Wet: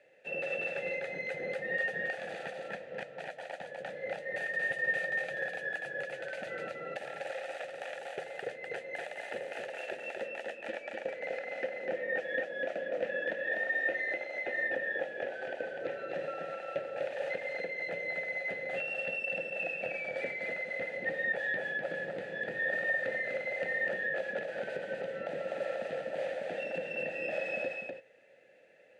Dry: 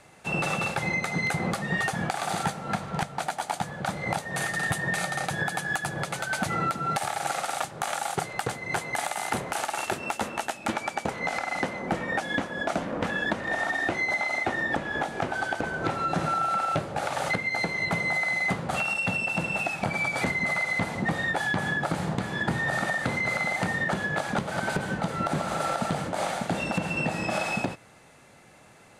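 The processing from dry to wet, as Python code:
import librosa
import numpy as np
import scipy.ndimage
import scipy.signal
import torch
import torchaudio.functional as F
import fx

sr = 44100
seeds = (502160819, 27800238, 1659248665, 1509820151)

y = fx.vowel_filter(x, sr, vowel='e')
y = y + 10.0 ** (-3.5 / 20.0) * np.pad(y, (int(249 * sr / 1000.0), 0))[:len(y)]
y = y * librosa.db_to_amplitude(2.0)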